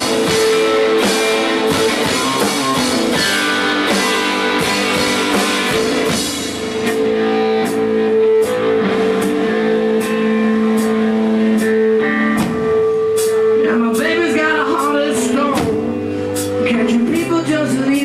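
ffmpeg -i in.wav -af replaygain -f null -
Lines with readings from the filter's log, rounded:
track_gain = -2.5 dB
track_peak = 0.453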